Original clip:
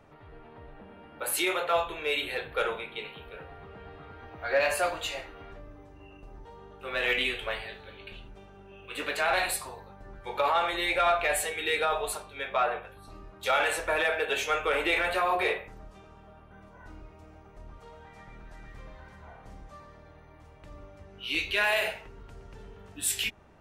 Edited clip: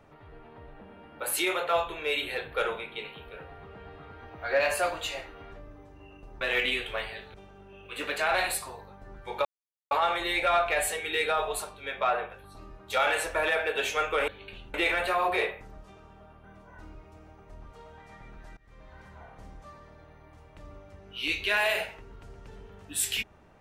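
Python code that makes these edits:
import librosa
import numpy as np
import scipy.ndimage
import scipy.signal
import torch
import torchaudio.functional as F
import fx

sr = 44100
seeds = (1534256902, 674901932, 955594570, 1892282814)

y = fx.edit(x, sr, fx.cut(start_s=6.41, length_s=0.53),
    fx.move(start_s=7.87, length_s=0.46, to_s=14.81),
    fx.insert_silence(at_s=10.44, length_s=0.46),
    fx.fade_in_from(start_s=18.64, length_s=0.45, floor_db=-23.5), tone=tone)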